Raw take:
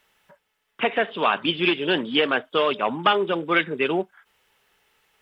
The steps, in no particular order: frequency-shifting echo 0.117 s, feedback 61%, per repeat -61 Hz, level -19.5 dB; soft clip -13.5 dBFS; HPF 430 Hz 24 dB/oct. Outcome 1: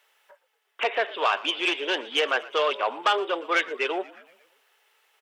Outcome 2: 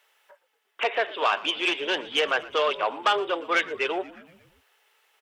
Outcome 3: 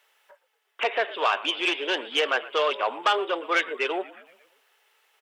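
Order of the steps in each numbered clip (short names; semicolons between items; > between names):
soft clip > frequency-shifting echo > HPF; soft clip > HPF > frequency-shifting echo; frequency-shifting echo > soft clip > HPF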